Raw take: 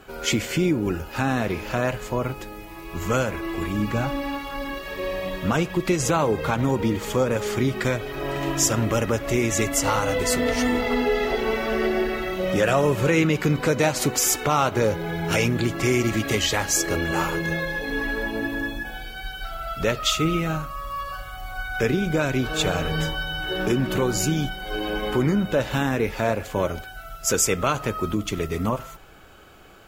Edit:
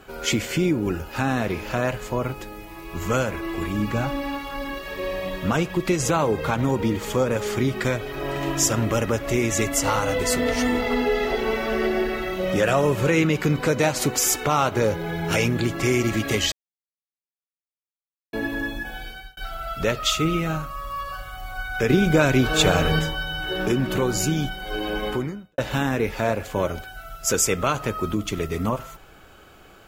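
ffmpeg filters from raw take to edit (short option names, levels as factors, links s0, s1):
-filter_complex "[0:a]asplit=7[s0][s1][s2][s3][s4][s5][s6];[s0]atrim=end=16.52,asetpts=PTS-STARTPTS,afade=t=out:st=16.516:d=0.004:c=hsin[s7];[s1]atrim=start=16.52:end=18.33,asetpts=PTS-STARTPTS,volume=0[s8];[s2]atrim=start=18.33:end=19.37,asetpts=PTS-STARTPTS,afade=t=in:d=0.004:c=hsin,afade=t=out:st=0.75:d=0.29[s9];[s3]atrim=start=19.37:end=21.902,asetpts=PTS-STARTPTS,afade=t=in:d=0.004:c=hsin[s10];[s4]atrim=start=21.898:end=22.992,asetpts=PTS-STARTPTS,volume=1.78[s11];[s5]atrim=start=22.988:end=25.58,asetpts=PTS-STARTPTS,afade=t=out:st=2.092:d=0.5:c=qua[s12];[s6]atrim=start=25.58,asetpts=PTS-STARTPTS,afade=t=in:d=0.004:c=hsin[s13];[s7][s8][s9][s10]concat=n=4:v=0:a=1[s14];[s14][s11]acrossfade=d=0.004:c1=hsin:c2=hsin[s15];[s12][s13]concat=n=2:v=0:a=1[s16];[s15][s16]acrossfade=d=0.004:c1=hsin:c2=hsin"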